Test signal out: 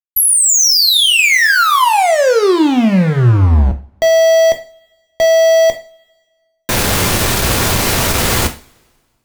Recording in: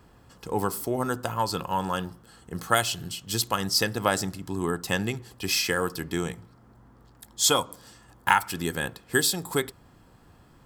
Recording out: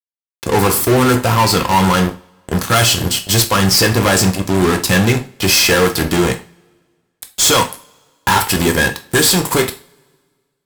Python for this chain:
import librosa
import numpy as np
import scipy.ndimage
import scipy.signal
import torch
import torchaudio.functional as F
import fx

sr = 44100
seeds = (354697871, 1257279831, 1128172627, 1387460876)

y = fx.fuzz(x, sr, gain_db=35.0, gate_db=-38.0)
y = fx.rev_double_slope(y, sr, seeds[0], early_s=0.33, late_s=1.7, knee_db=-28, drr_db=5.5)
y = F.gain(torch.from_numpy(y), 2.5).numpy()